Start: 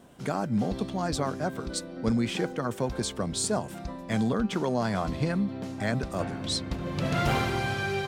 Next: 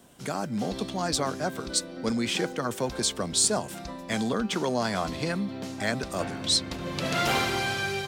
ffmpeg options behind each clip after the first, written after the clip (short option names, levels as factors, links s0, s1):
-filter_complex "[0:a]highshelf=f=3000:g=10.5,acrossover=split=210|6500[s0][s1][s2];[s0]alimiter=level_in=2.24:limit=0.0631:level=0:latency=1,volume=0.447[s3];[s1]dynaudnorm=f=190:g=5:m=1.5[s4];[s3][s4][s2]amix=inputs=3:normalize=0,volume=0.708"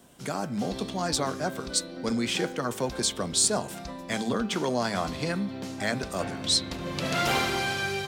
-af "bandreject=f=109.4:t=h:w=4,bandreject=f=218.8:t=h:w=4,bandreject=f=328.2:t=h:w=4,bandreject=f=437.6:t=h:w=4,bandreject=f=547:t=h:w=4,bandreject=f=656.4:t=h:w=4,bandreject=f=765.8:t=h:w=4,bandreject=f=875.2:t=h:w=4,bandreject=f=984.6:t=h:w=4,bandreject=f=1094:t=h:w=4,bandreject=f=1203.4:t=h:w=4,bandreject=f=1312.8:t=h:w=4,bandreject=f=1422.2:t=h:w=4,bandreject=f=1531.6:t=h:w=4,bandreject=f=1641:t=h:w=4,bandreject=f=1750.4:t=h:w=4,bandreject=f=1859.8:t=h:w=4,bandreject=f=1969.2:t=h:w=4,bandreject=f=2078.6:t=h:w=4,bandreject=f=2188:t=h:w=4,bandreject=f=2297.4:t=h:w=4,bandreject=f=2406.8:t=h:w=4,bandreject=f=2516.2:t=h:w=4,bandreject=f=2625.6:t=h:w=4,bandreject=f=2735:t=h:w=4,bandreject=f=2844.4:t=h:w=4,bandreject=f=2953.8:t=h:w=4,bandreject=f=3063.2:t=h:w=4,bandreject=f=3172.6:t=h:w=4,bandreject=f=3282:t=h:w=4,bandreject=f=3391.4:t=h:w=4,bandreject=f=3500.8:t=h:w=4,bandreject=f=3610.2:t=h:w=4,bandreject=f=3719.6:t=h:w=4,bandreject=f=3829:t=h:w=4,bandreject=f=3938.4:t=h:w=4,bandreject=f=4047.8:t=h:w=4,bandreject=f=4157.2:t=h:w=4"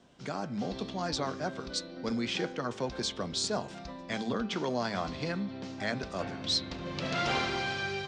-af "lowpass=f=5900:w=0.5412,lowpass=f=5900:w=1.3066,volume=0.596"